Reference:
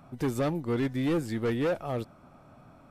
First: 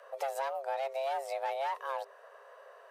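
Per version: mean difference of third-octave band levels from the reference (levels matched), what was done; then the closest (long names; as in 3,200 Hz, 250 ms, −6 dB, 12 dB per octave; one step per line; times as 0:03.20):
13.5 dB: frequency shifter +400 Hz
downward compressor 3 to 1, threshold −33 dBFS, peak gain reduction 7.5 dB
low-shelf EQ 96 Hz −10 dB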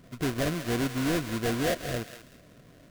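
8.5 dB: sample-rate reduction 1,200 Hz, jitter 20%
Butterworth band-reject 860 Hz, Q 3.9
on a send: feedback echo with a high-pass in the loop 189 ms, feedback 28%, high-pass 1,200 Hz, level −8 dB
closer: second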